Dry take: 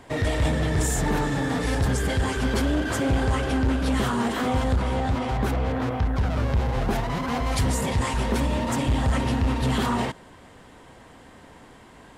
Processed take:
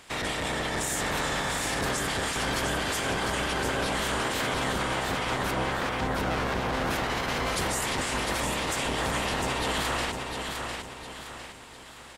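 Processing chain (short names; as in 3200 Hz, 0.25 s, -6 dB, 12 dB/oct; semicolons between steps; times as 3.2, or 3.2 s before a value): spectral limiter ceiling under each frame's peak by 22 dB; limiter -17.5 dBFS, peak gain reduction 10 dB; feedback echo 0.704 s, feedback 42%, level -5 dB; gain -3.5 dB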